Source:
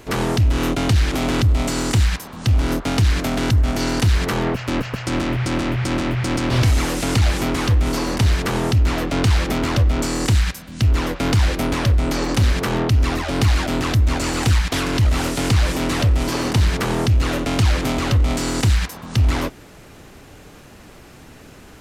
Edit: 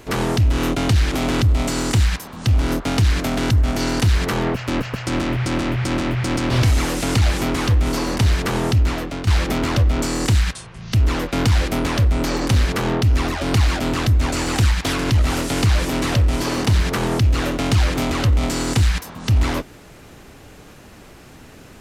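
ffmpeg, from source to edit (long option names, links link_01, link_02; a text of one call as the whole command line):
ffmpeg -i in.wav -filter_complex "[0:a]asplit=4[link_01][link_02][link_03][link_04];[link_01]atrim=end=9.27,asetpts=PTS-STARTPTS,afade=type=out:start_time=8.8:duration=0.47:silence=0.266073[link_05];[link_02]atrim=start=9.27:end=10.534,asetpts=PTS-STARTPTS,afade=type=in:duration=0.004:curve=hsin:silence=0.266073[link_06];[link_03]atrim=start=10.53:end=10.8,asetpts=PTS-STARTPTS,asetrate=29988,aresample=44100,atrim=end_sample=17510,asetpts=PTS-STARTPTS[link_07];[link_04]atrim=start=10.796[link_08];[link_05][link_06]concat=n=2:v=0:a=1[link_09];[link_09][link_07]acrossfade=duration=0.004:curve1=hsin:curve2=hsin[link_10];[link_10][link_08]acrossfade=duration=0.004:curve1=hsin:curve2=hsin" out.wav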